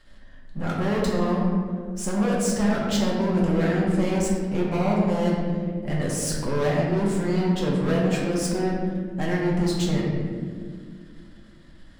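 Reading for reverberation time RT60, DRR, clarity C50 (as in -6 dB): 2.0 s, -4.5 dB, 0.0 dB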